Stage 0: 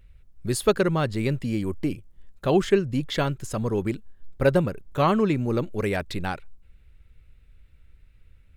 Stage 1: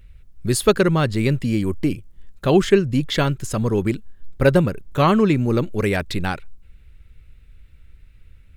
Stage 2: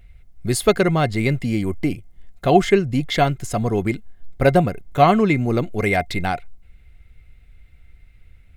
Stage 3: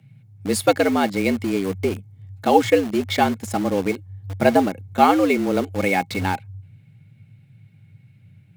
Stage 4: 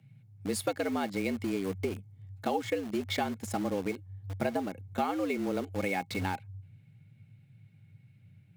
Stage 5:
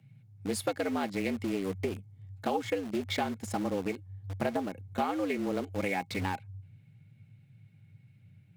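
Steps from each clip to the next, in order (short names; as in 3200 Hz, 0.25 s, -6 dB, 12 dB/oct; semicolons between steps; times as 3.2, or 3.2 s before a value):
bell 700 Hz -3.5 dB 1.5 oct; gain +6.5 dB
small resonant body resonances 710/2100 Hz, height 17 dB, ringing for 85 ms; gain -1 dB
frequency shift +95 Hz; in parallel at -8 dB: bit-crush 4-bit; on the sum: gain -4 dB
compressor 5:1, threshold -20 dBFS, peak gain reduction 11 dB; gain -7.5 dB
Doppler distortion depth 0.2 ms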